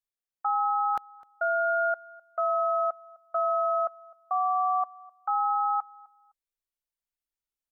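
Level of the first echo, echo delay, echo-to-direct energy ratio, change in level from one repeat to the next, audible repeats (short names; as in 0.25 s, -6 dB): -23.0 dB, 0.256 s, -23.0 dB, no steady repeat, 1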